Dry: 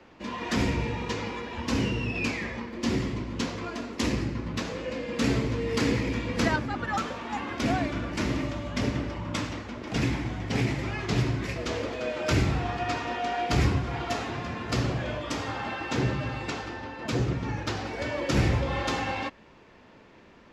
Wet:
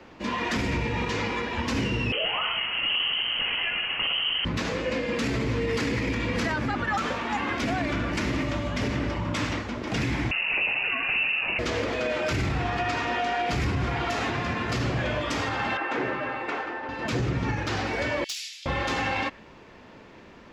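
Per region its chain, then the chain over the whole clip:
0:02.12–0:04.45: linear delta modulator 64 kbit/s, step −33 dBFS + voice inversion scrambler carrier 3,100 Hz
0:10.31–0:11.59: gain into a clipping stage and back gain 20.5 dB + voice inversion scrambler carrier 2,800 Hz
0:15.77–0:16.89: high-pass filter 56 Hz + three-way crossover with the lows and the highs turned down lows −21 dB, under 290 Hz, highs −17 dB, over 2,500 Hz
0:18.24–0:18.66: inverse Chebyshev high-pass filter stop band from 580 Hz, stop band 80 dB + gain into a clipping stage and back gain 32.5 dB
whole clip: dynamic equaliser 2,000 Hz, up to +4 dB, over −43 dBFS, Q 0.93; brickwall limiter −23.5 dBFS; level +5 dB

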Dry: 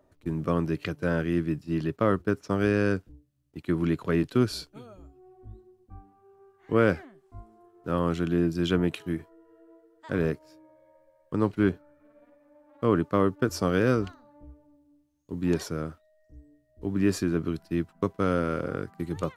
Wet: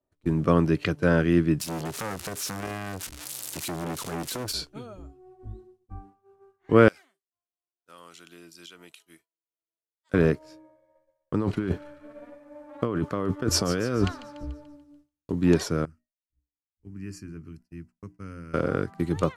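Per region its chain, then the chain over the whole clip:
0:01.60–0:04.54: spike at every zero crossing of −23 dBFS + downward compressor 4 to 1, threshold −29 dBFS + saturating transformer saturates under 1,300 Hz
0:06.88–0:10.14: first difference + notch filter 1,700 Hz, Q 9.4 + downward compressor, threshold −47 dBFS
0:11.34–0:15.32: compressor whose output falls as the input rises −31 dBFS + delay with a high-pass on its return 145 ms, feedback 51%, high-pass 1,500 Hz, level −13 dB
0:15.85–0:18.54: Butterworth band-reject 3,600 Hz, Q 2.1 + guitar amp tone stack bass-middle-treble 6-0-2 + mains-hum notches 60/120/180/240/300/360 Hz
whole clip: low-pass filter 11,000 Hz 12 dB per octave; downward expander −50 dBFS; level +5.5 dB

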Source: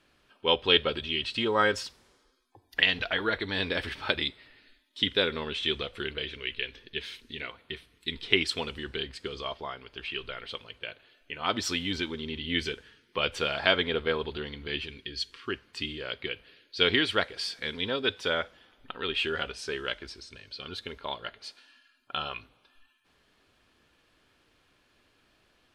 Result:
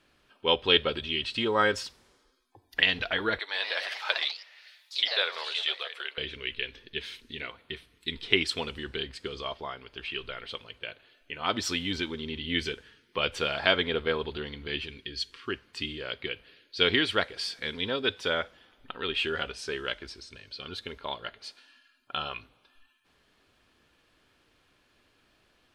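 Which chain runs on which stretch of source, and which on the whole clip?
0:03.39–0:06.18: high-pass filter 600 Hz 24 dB per octave + delay with pitch and tempo change per echo 136 ms, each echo +2 semitones, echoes 3, each echo −6 dB + one half of a high-frequency compander encoder only
whole clip: no processing

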